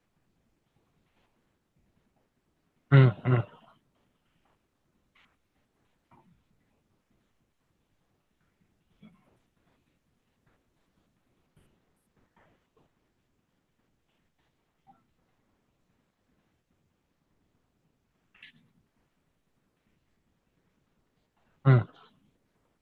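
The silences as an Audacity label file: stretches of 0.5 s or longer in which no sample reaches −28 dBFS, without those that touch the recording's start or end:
3.410000	21.660000	silence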